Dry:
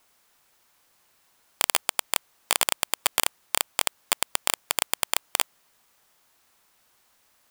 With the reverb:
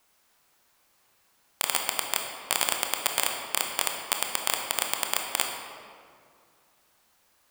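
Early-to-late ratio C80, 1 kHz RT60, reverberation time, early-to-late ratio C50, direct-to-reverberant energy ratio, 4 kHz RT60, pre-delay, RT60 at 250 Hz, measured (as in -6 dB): 5.0 dB, 2.2 s, 2.2 s, 3.5 dB, 2.0 dB, 1.3 s, 21 ms, 2.6 s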